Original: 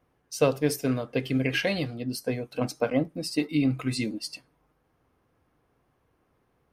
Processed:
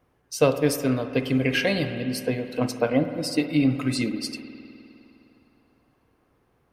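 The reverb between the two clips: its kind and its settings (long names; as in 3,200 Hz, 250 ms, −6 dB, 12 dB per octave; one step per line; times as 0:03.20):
spring reverb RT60 2.9 s, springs 51 ms, chirp 60 ms, DRR 9 dB
level +3 dB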